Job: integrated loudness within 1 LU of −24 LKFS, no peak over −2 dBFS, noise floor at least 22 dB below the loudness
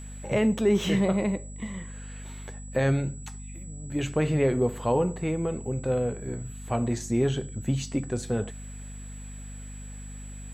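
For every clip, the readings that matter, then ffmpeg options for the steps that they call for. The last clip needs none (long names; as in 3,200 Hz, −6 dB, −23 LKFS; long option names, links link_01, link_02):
mains hum 50 Hz; hum harmonics up to 250 Hz; level of the hum −38 dBFS; interfering tone 7,800 Hz; level of the tone −47 dBFS; integrated loudness −27.5 LKFS; sample peak −13.0 dBFS; target loudness −24.0 LKFS
→ -af "bandreject=frequency=50:width_type=h:width=4,bandreject=frequency=100:width_type=h:width=4,bandreject=frequency=150:width_type=h:width=4,bandreject=frequency=200:width_type=h:width=4,bandreject=frequency=250:width_type=h:width=4"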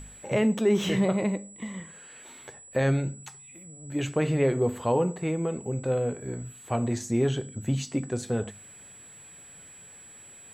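mains hum none found; interfering tone 7,800 Hz; level of the tone −47 dBFS
→ -af "bandreject=frequency=7800:width=30"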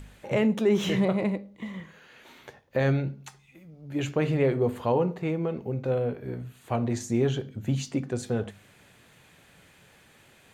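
interfering tone none found; integrated loudness −28.0 LKFS; sample peak −13.5 dBFS; target loudness −24.0 LKFS
→ -af "volume=4dB"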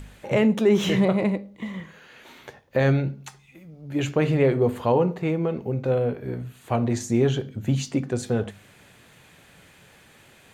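integrated loudness −24.0 LKFS; sample peak −9.5 dBFS; background noise floor −54 dBFS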